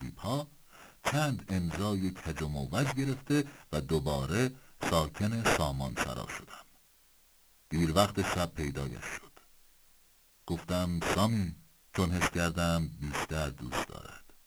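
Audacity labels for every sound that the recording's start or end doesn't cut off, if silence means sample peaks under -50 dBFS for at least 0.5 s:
7.710000	9.430000	sound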